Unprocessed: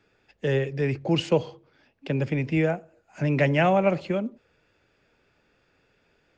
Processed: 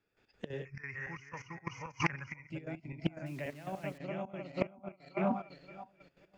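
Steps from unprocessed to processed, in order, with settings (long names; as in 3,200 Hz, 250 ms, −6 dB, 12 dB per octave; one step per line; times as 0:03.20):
feedback delay that plays each chunk backwards 266 ms, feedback 56%, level −1 dB
noise reduction from a noise print of the clip's start 14 dB
0:00.65–0:02.50: drawn EQ curve 110 Hz 0 dB, 290 Hz −12 dB, 640 Hz −12 dB, 1,100 Hz +13 dB, 2,100 Hz +14 dB, 3,700 Hz −22 dB, 6,000 Hz +14 dB, 8,600 Hz −27 dB
in parallel at +3 dB: downward compressor 16 to 1, threshold −28 dBFS, peak gain reduction 15.5 dB
on the sum: gate with flip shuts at −17 dBFS, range −24 dB
gate pattern "..x.x.xxx.xxxx" 180 BPM −12 dB
0:03.26–0:03.98: bit-depth reduction 10 bits, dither none
highs frequency-modulated by the lows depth 0.25 ms
level +2 dB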